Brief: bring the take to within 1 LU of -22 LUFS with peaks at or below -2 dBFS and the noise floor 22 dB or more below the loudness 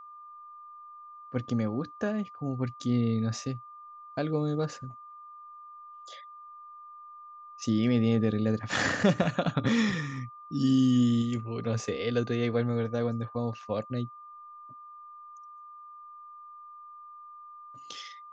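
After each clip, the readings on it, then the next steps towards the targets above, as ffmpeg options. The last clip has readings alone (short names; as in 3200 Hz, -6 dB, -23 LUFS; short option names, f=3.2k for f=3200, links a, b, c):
steady tone 1200 Hz; tone level -45 dBFS; loudness -29.0 LUFS; peak -11.0 dBFS; loudness target -22.0 LUFS
-> -af "bandreject=f=1.2k:w=30"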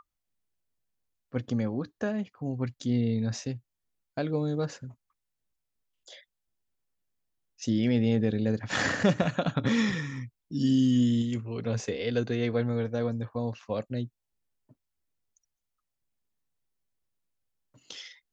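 steady tone none; loudness -29.0 LUFS; peak -11.5 dBFS; loudness target -22.0 LUFS
-> -af "volume=7dB"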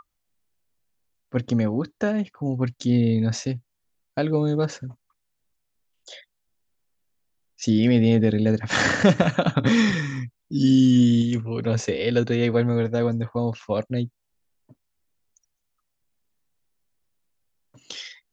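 loudness -22.0 LUFS; peak -4.5 dBFS; noise floor -77 dBFS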